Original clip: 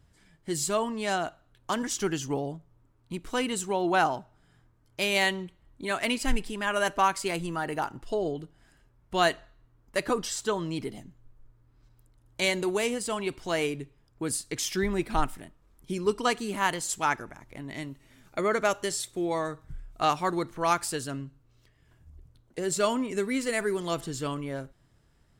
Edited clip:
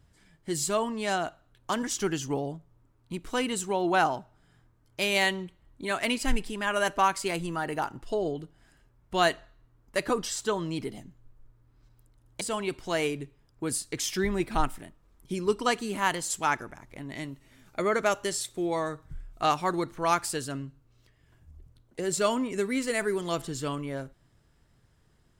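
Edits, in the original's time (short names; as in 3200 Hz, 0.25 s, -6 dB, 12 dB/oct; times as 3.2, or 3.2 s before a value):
12.41–13 cut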